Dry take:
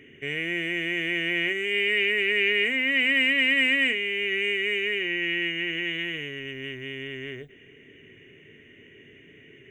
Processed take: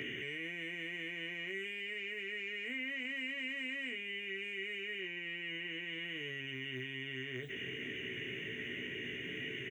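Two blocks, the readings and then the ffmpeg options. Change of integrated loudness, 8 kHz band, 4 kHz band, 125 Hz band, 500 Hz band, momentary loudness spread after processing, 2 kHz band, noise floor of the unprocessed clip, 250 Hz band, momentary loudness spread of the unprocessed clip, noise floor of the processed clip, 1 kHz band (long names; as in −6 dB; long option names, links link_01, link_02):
−16.0 dB, can't be measured, −14.0 dB, −7.0 dB, −14.5 dB, 3 LU, −15.0 dB, −52 dBFS, −12.5 dB, 15 LU, −44 dBFS, −14.0 dB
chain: -filter_complex "[0:a]acontrast=81,alimiter=level_in=10dB:limit=-24dB:level=0:latency=1,volume=-10dB,highpass=83,equalizer=frequency=9300:width=7.5:gain=-4,acrossover=split=380|1300[link_01][link_02][link_03];[link_01]acompressor=threshold=-53dB:ratio=4[link_04];[link_02]acompressor=threshold=-60dB:ratio=4[link_05];[link_03]acompressor=threshold=-45dB:ratio=4[link_06];[link_04][link_05][link_06]amix=inputs=3:normalize=0,asplit=2[link_07][link_08];[link_08]adelay=16,volume=-6dB[link_09];[link_07][link_09]amix=inputs=2:normalize=0,volume=4.5dB"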